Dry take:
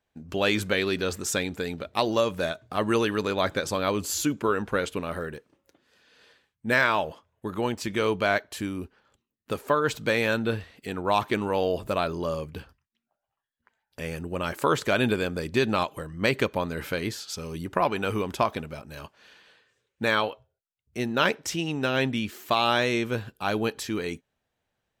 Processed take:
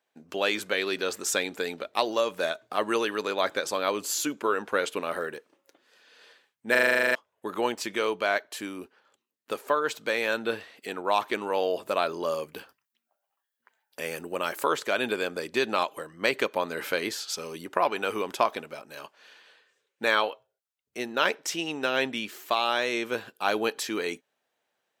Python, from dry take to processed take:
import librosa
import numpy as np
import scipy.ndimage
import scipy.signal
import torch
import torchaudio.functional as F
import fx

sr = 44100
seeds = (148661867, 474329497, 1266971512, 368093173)

y = fx.high_shelf(x, sr, hz=12000.0, db=10.5, at=(12.26, 14.67))
y = fx.edit(y, sr, fx.stutter_over(start_s=6.71, slice_s=0.04, count=11), tone=tone)
y = scipy.signal.sosfilt(scipy.signal.butter(2, 370.0, 'highpass', fs=sr, output='sos'), y)
y = fx.rider(y, sr, range_db=3, speed_s=0.5)